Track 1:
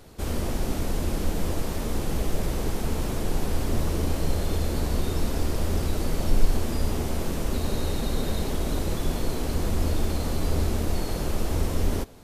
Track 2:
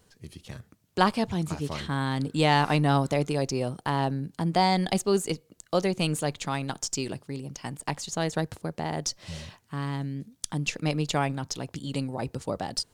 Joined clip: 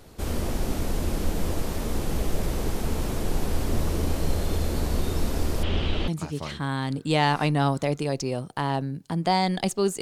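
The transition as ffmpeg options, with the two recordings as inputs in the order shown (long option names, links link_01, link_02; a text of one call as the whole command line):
ffmpeg -i cue0.wav -i cue1.wav -filter_complex "[0:a]asettb=1/sr,asplit=3[link_01][link_02][link_03];[link_01]atrim=end=5.634[link_04];[link_02]atrim=start=5.63:end=6.08,asetpts=PTS-STARTPTS,afade=type=in:duration=0.004:curve=qsin,afade=type=out:start_time=0.446:duration=0.004:curve=qsin,lowpass=frequency=3100:width_type=q:width=5.3[link_05];[link_03]atrim=start=6.076[link_06];[link_04][link_05]acrossfade=duration=0.004:curve1=hsin:curve2=qsin[link_07];[link_07][link_06]acrossfade=duration=0.004:curve1=qsin:curve2=hsin,apad=whole_dur=10.01,atrim=end=10.01,atrim=end=6.082[link_08];[1:a]atrim=start=1.368:end=5.3[link_09];[link_08][link_09]acrossfade=duration=0.004:curve1=hsin:curve2=hsin" out.wav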